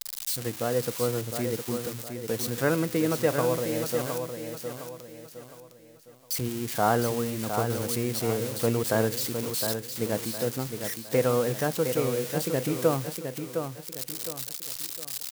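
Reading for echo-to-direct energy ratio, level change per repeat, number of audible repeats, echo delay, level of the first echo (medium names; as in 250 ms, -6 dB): -6.5 dB, -8.5 dB, 4, 711 ms, -7.0 dB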